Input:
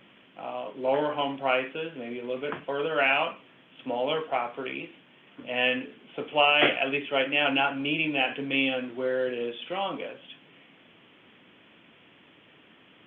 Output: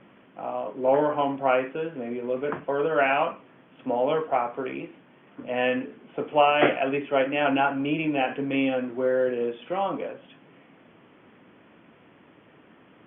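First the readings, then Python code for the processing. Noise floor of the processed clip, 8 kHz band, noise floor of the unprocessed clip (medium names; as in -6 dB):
-56 dBFS, no reading, -57 dBFS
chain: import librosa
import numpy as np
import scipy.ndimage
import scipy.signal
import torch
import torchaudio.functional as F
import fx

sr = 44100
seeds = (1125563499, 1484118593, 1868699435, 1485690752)

y = scipy.signal.sosfilt(scipy.signal.butter(2, 1500.0, 'lowpass', fs=sr, output='sos'), x)
y = y * librosa.db_to_amplitude(4.5)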